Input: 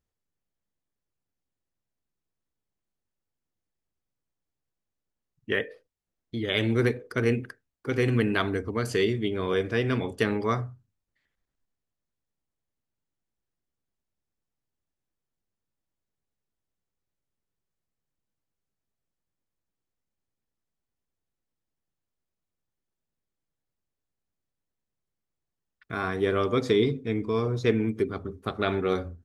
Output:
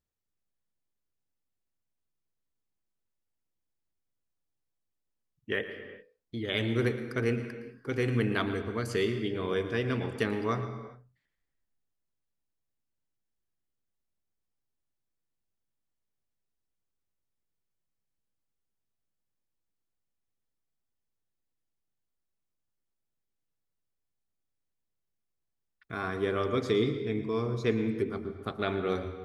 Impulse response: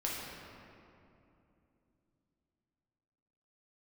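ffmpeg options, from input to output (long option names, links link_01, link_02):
-filter_complex "[0:a]asplit=2[link_01][link_02];[1:a]atrim=start_sample=2205,afade=type=out:start_time=0.35:duration=0.01,atrim=end_sample=15876,adelay=114[link_03];[link_02][link_03]afir=irnorm=-1:irlink=0,volume=-13dB[link_04];[link_01][link_04]amix=inputs=2:normalize=0,volume=-4.5dB"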